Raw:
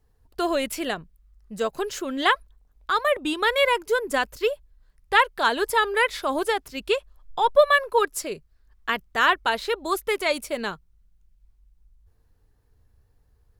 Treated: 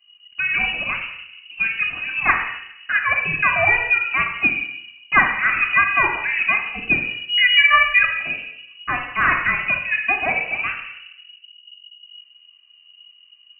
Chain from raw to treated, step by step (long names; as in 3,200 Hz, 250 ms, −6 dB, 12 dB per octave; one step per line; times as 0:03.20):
rectangular room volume 3,800 cubic metres, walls furnished, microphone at 4.2 metres
voice inversion scrambler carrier 2,900 Hz